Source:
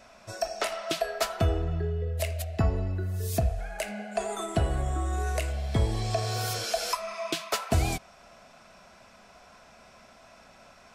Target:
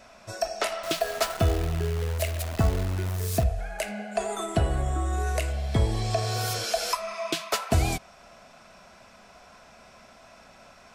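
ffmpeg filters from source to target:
ffmpeg -i in.wav -filter_complex "[0:a]asettb=1/sr,asplit=3[link_01][link_02][link_03];[link_01]atrim=end=0.834[link_04];[link_02]atrim=start=0.83:end=3.44,asetpts=PTS-STARTPTS,afade=type=in:duration=0.004:curve=qsin,afade=type=out:start_time=2.606:duration=0.004:curve=qsin,acrusher=bits=7:dc=4:mix=0:aa=0.000001[link_05];[link_03]atrim=start=3.436[link_06];[link_04][link_05]acrossfade=duration=0.004:curve1=hsin:curve2=qsin[link_07];[link_07][link_06]acrossfade=duration=0.004:curve1=qsin:curve2=hsin,volume=2dB" out.wav

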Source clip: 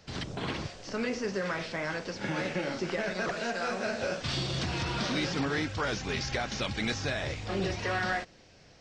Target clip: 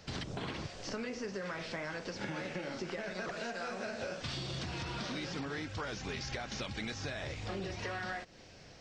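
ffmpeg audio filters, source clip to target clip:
ffmpeg -i in.wav -af "acompressor=threshold=-39dB:ratio=6,volume=2dB" out.wav

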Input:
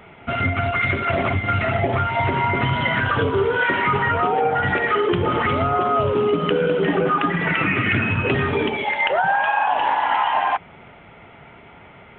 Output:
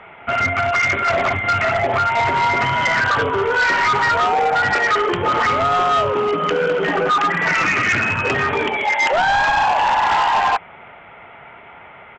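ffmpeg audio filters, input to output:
ffmpeg -i in.wav -filter_complex "[0:a]acrossover=split=550 2900:gain=0.251 1 0.224[link_01][link_02][link_03];[link_01][link_02][link_03]amix=inputs=3:normalize=0,aresample=16000,asoftclip=type=hard:threshold=-20dB,aresample=44100,volume=7dB" out.wav

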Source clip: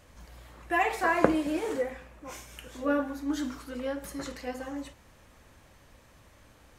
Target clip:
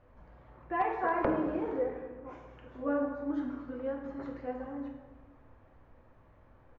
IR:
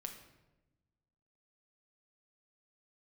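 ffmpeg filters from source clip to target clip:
-filter_complex "[1:a]atrim=start_sample=2205,asetrate=32193,aresample=44100[link_01];[0:a][link_01]afir=irnorm=-1:irlink=0,aresample=16000,aeval=exprs='0.126*(abs(mod(val(0)/0.126+3,4)-2)-1)':channel_layout=same,aresample=44100,lowpass=1200,equalizer=frequency=140:width=0.78:gain=-3.5"

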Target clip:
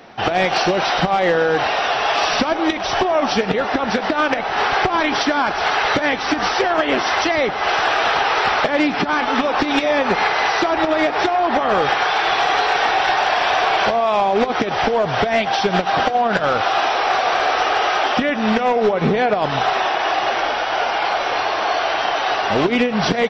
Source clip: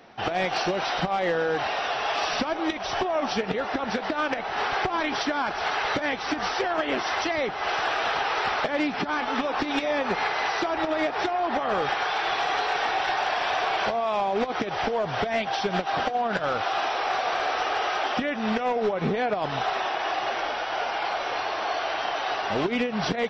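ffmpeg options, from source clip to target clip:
ffmpeg -i in.wav -af "aecho=1:1:100:0.119,volume=8.5dB" out.wav

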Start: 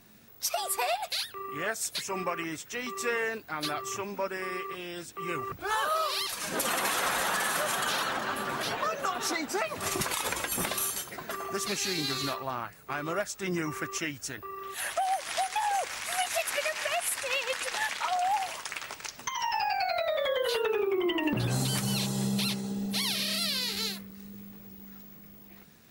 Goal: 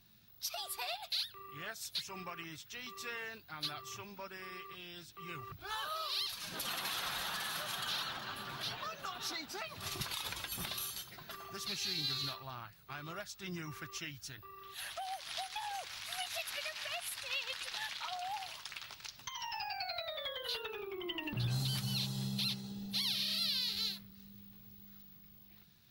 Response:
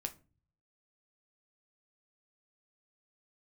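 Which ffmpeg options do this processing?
-af "equalizer=frequency=125:width_type=o:width=1:gain=3,equalizer=frequency=250:width_type=o:width=1:gain=-8,equalizer=frequency=500:width_type=o:width=1:gain=-11,equalizer=frequency=1000:width_type=o:width=1:gain=-4,equalizer=frequency=2000:width_type=o:width=1:gain=-6,equalizer=frequency=4000:width_type=o:width=1:gain=7,equalizer=frequency=8000:width_type=o:width=1:gain=-11,volume=-5.5dB"

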